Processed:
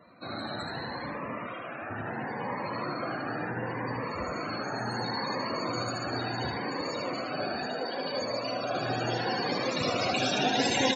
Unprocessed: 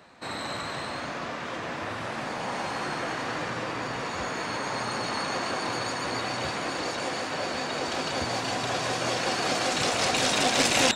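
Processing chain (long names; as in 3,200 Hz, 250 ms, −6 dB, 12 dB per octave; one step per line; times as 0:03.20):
0:01.47–0:01.90: low-shelf EQ 490 Hz −8.5 dB
spectral peaks only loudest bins 64
0:07.66–0:08.75: loudspeaker in its box 230–7,700 Hz, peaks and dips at 350 Hz −6 dB, 600 Hz +6 dB, 900 Hz −6 dB, 2,000 Hz −4 dB, 3,700 Hz −6 dB, 6,000 Hz +7 dB
single-tap delay 75 ms −6 dB
dense smooth reverb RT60 1 s, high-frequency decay 0.55×, DRR 14.5 dB
phaser whose notches keep moving one way rising 0.71 Hz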